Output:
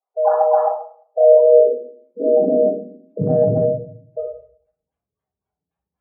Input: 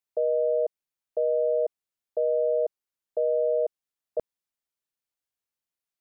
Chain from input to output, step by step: decimation with a swept rate 34×, swing 160% 3.8 Hz; high-pass sweep 770 Hz -> 68 Hz, 0.85–4.24; spectral gate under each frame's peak -10 dB strong; thirty-one-band EQ 100 Hz -9 dB, 315 Hz -4 dB, 800 Hz +11 dB; shoebox room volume 690 m³, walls furnished, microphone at 5.4 m; 3.2–3.65 transient shaper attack +3 dB, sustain -1 dB; gain -4 dB

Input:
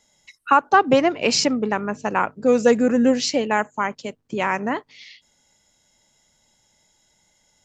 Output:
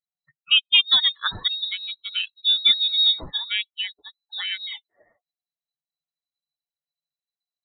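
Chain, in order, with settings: per-bin expansion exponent 2; inverted band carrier 4000 Hz

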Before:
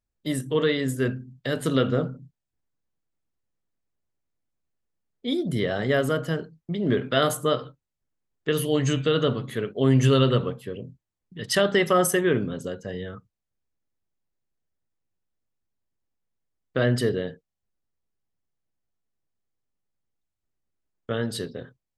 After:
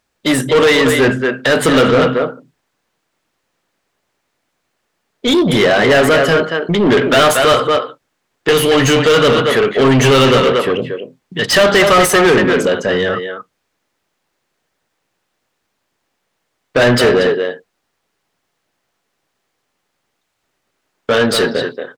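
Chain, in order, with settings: speakerphone echo 0.23 s, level -8 dB; overdrive pedal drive 27 dB, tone 3500 Hz, clips at -8 dBFS; gain +5.5 dB

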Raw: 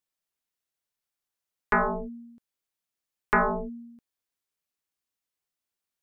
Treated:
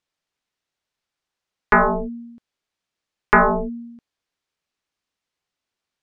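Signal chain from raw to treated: LPF 5400 Hz; gain +8.5 dB

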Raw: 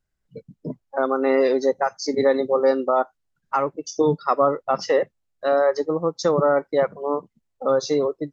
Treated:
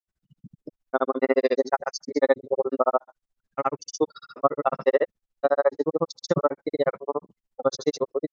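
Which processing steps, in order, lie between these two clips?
grains 55 ms, grains 14/s, pitch spread up and down by 0 st; gain +1.5 dB

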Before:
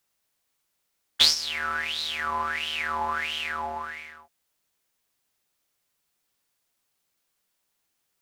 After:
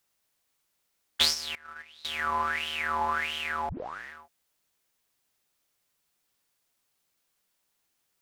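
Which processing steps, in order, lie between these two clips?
1.55–2.05 gate -25 dBFS, range -23 dB; dynamic EQ 4400 Hz, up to -6 dB, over -36 dBFS, Q 0.91; 3.69 tape start 0.43 s

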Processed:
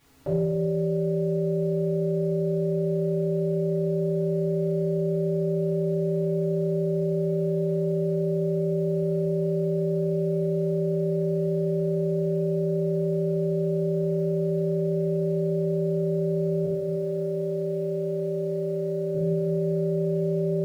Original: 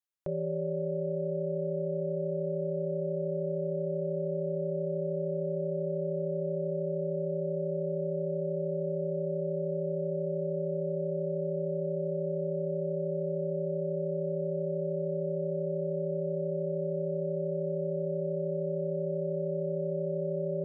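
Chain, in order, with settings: added noise pink -68 dBFS; 16.64–19.15 HPF 270 Hz 6 dB/oct; reverb RT60 1.0 s, pre-delay 4 ms, DRR -10 dB

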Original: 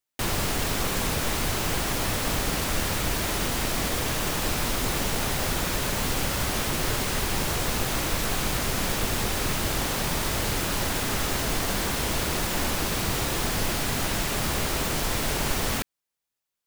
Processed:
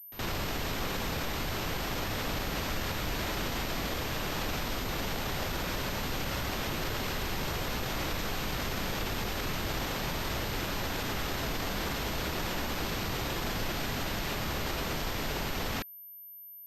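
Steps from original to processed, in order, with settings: pre-echo 70 ms -21.5 dB; limiter -23 dBFS, peak gain reduction 10.5 dB; pulse-width modulation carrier 13000 Hz

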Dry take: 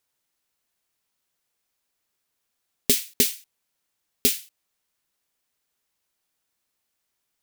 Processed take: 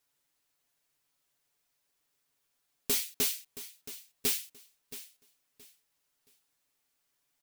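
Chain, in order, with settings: comb 7 ms, depth 77%; soft clip -22 dBFS, distortion -5 dB; feedback echo 0.673 s, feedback 26%, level -15 dB; gain -2.5 dB

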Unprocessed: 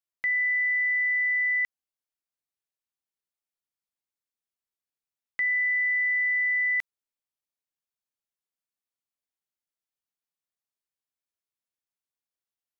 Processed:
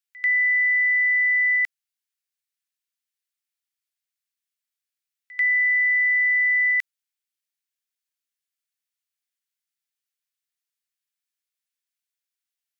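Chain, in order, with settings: HPF 1500 Hz 24 dB/oct; reverse echo 91 ms -21 dB; gain +5 dB

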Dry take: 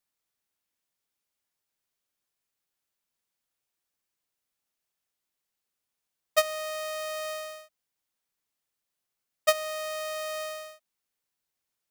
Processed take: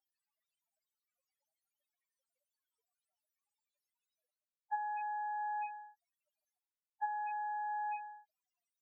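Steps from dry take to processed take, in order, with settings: Chebyshev high-pass 380 Hz, order 2; on a send: echo 0.351 s -22.5 dB; on the sum: speed mistake 33 rpm record played at 45 rpm; reverse; compressor 10:1, threshold -48 dBFS, peak gain reduction 29.5 dB; reverse; loudest bins only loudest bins 4; resonant low shelf 690 Hz +11.5 dB, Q 1.5; gain +13.5 dB

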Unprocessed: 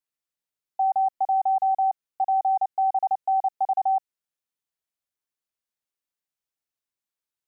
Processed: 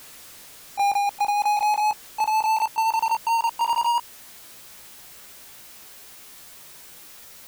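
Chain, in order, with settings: gliding pitch shift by +7 st starting unshifted; power-law curve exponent 0.35

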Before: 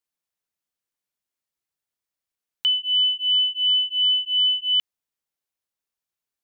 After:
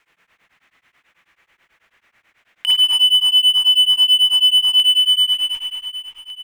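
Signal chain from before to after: median filter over 9 samples; in parallel at -8 dB: Schmitt trigger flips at -30.5 dBFS; on the sum: bell 2100 Hz +14.5 dB 1.8 oct; feedback echo 0.751 s, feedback 23%, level -23 dB; spring tank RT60 2.3 s, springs 45/51 ms, chirp 35 ms, DRR -4 dB; compressor 6:1, threshold -14 dBFS, peak gain reduction 13 dB; power-law curve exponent 0.7; beating tremolo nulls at 9.2 Hz; gain +1.5 dB

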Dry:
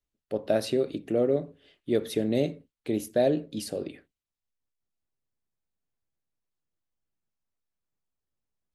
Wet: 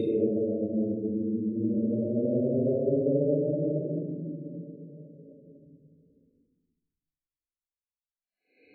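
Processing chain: expander -55 dBFS; spectral gate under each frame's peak -15 dB strong; Paulstretch 13×, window 0.10 s, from 2.17; gain -1.5 dB

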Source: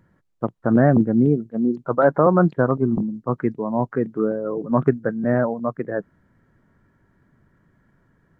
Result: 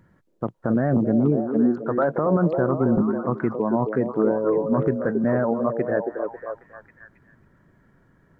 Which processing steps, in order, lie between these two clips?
limiter -14 dBFS, peak gain reduction 10.5 dB; on a send: delay with a stepping band-pass 0.272 s, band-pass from 420 Hz, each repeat 0.7 oct, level -2.5 dB; on the sum: gain +2 dB

